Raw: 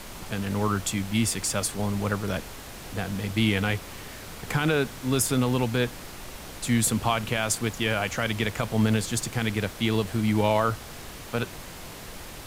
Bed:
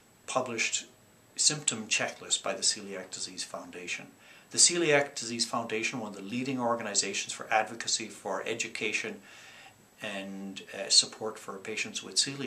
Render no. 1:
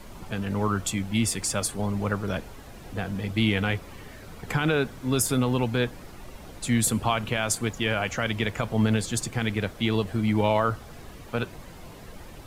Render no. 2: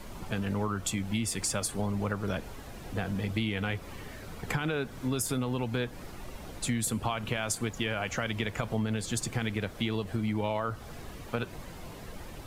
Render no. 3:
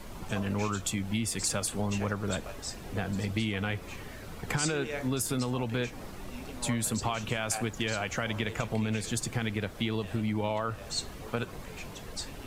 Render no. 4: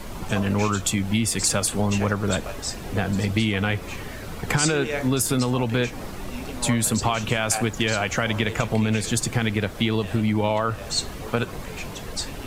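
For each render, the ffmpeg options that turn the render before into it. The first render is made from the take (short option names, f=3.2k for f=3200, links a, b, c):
-af "afftdn=nr=10:nf=-41"
-af "acompressor=threshold=-27dB:ratio=6"
-filter_complex "[1:a]volume=-12.5dB[a];[0:a][a]amix=inputs=2:normalize=0"
-af "volume=8.5dB"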